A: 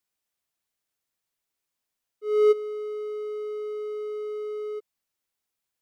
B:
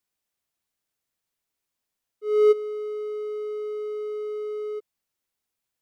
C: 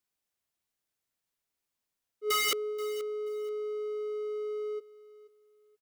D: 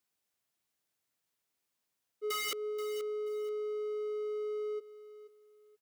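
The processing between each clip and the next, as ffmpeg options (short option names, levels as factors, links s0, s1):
-af "lowshelf=f=420:g=3"
-af "aeval=exprs='(mod(10*val(0)+1,2)-1)/10':c=same,aecho=1:1:481|962:0.133|0.0307,volume=0.708"
-af "acompressor=threshold=0.0158:ratio=6,highpass=87,volume=1.26"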